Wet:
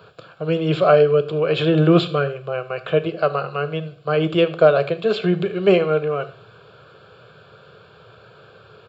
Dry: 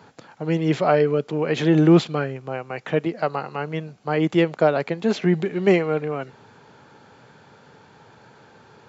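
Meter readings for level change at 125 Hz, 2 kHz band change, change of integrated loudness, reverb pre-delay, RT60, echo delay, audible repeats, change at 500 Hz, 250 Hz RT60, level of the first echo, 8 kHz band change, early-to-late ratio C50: +1.5 dB, +2.0 dB, +2.5 dB, 8 ms, 0.45 s, 77 ms, 1, +4.5 dB, 0.45 s, −20.5 dB, can't be measured, 15.5 dB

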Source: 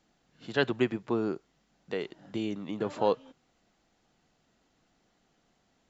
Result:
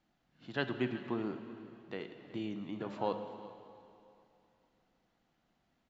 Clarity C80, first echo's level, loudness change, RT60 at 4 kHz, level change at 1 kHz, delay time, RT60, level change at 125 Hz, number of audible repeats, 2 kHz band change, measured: 9.0 dB, −18.0 dB, −7.5 dB, 2.6 s, −6.0 dB, 371 ms, 2.8 s, −5.0 dB, 1, −6.0 dB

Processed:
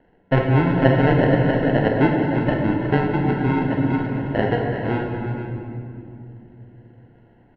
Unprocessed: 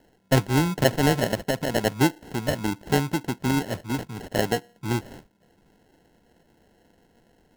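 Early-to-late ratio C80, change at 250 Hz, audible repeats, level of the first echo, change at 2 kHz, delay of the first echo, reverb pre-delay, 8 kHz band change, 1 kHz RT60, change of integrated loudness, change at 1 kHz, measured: 2.0 dB, +6.5 dB, 5, −11.0 dB, +4.0 dB, 48 ms, 27 ms, below −30 dB, 2.3 s, +5.0 dB, +5.0 dB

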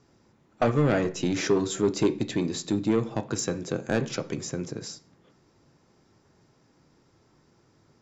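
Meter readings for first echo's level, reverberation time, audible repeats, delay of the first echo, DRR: no echo audible, 0.50 s, no echo audible, no echo audible, 10.0 dB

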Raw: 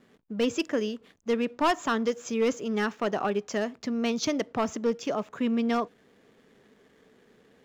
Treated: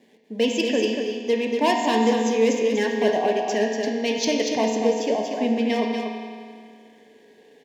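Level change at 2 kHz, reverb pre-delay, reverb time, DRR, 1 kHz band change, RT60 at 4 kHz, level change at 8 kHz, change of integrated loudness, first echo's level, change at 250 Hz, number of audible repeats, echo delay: +5.5 dB, 4 ms, 2.1 s, −1.0 dB, +5.5 dB, 1.9 s, can't be measured, +6.5 dB, −5.5 dB, +5.0 dB, 1, 239 ms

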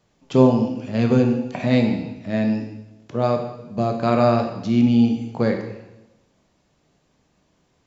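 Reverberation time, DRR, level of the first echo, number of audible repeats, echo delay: 1.0 s, 4.0 dB, no echo audible, no echo audible, no echo audible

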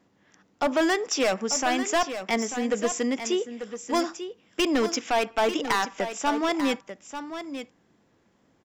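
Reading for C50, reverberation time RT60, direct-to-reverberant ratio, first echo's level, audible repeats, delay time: no reverb audible, no reverb audible, no reverb audible, −10.0 dB, 1, 892 ms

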